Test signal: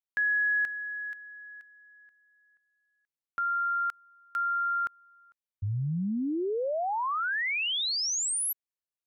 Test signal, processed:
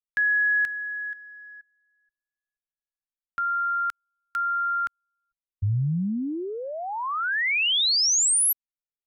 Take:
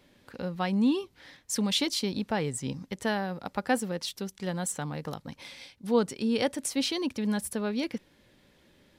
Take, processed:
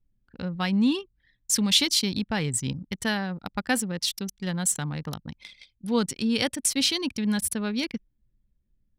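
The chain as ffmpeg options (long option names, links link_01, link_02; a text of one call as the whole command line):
ffmpeg -i in.wav -af "equalizer=frequency=550:width_type=o:width=2.6:gain=-12,anlmdn=0.0631,volume=9dB" out.wav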